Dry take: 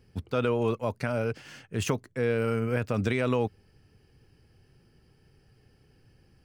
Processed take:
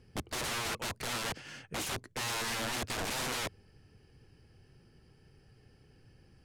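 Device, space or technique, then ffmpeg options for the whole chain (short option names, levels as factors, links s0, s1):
overflowing digital effects unit: -af "aeval=exprs='(mod(31.6*val(0)+1,2)-1)/31.6':c=same,lowpass=12000"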